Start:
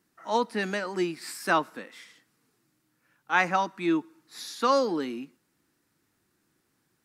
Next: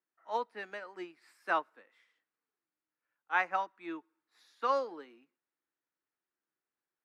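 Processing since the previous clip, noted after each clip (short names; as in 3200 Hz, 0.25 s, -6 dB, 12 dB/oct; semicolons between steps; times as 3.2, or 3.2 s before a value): three-band isolator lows -18 dB, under 380 Hz, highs -13 dB, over 3000 Hz; upward expander 1.5:1, over -45 dBFS; gain -5 dB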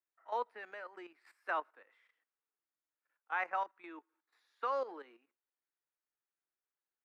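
high shelf 5000 Hz +10.5 dB; level quantiser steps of 12 dB; three-band isolator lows -18 dB, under 320 Hz, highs -15 dB, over 2800 Hz; gain +3 dB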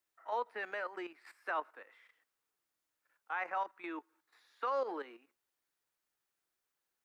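limiter -34.5 dBFS, peak gain reduction 11 dB; gain +7.5 dB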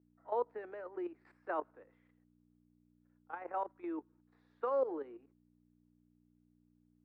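level quantiser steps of 12 dB; hum 60 Hz, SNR 24 dB; band-pass 360 Hz, Q 1.5; gain +11 dB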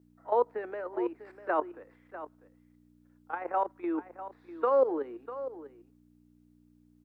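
echo 0.647 s -13.5 dB; gain +8.5 dB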